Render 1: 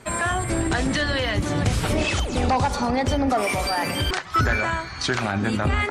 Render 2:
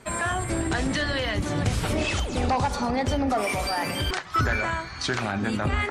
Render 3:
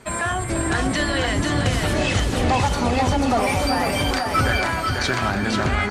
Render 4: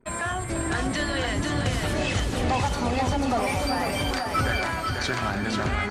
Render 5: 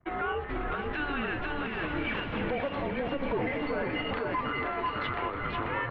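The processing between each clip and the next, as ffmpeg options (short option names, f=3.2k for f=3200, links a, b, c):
-af "flanger=delay=4.3:depth=9.3:regen=-86:speed=0.73:shape=sinusoidal,volume=1.5dB"
-af "aecho=1:1:490|882|1196|1446|1647:0.631|0.398|0.251|0.158|0.1,volume=3dB"
-af "anlmdn=0.158,volume=-5dB"
-af "highpass=f=350:t=q:w=0.5412,highpass=f=350:t=q:w=1.307,lowpass=f=3.2k:t=q:w=0.5176,lowpass=f=3.2k:t=q:w=0.7071,lowpass=f=3.2k:t=q:w=1.932,afreqshift=-290,alimiter=limit=-22dB:level=0:latency=1:release=139"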